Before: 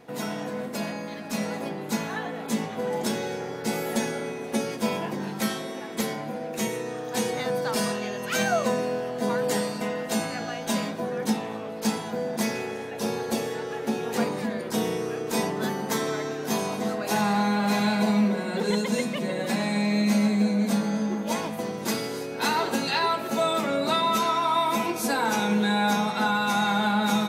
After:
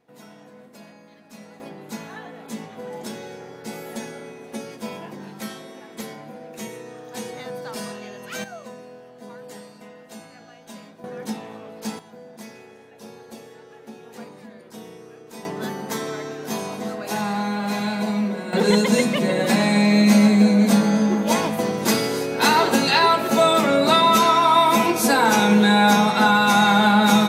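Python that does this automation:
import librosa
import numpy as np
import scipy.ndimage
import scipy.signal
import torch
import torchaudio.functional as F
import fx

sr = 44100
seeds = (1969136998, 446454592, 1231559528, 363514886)

y = fx.gain(x, sr, db=fx.steps((0.0, -14.5), (1.6, -6.0), (8.44, -14.5), (11.04, -4.5), (11.99, -13.5), (15.45, -1.0), (18.53, 8.0)))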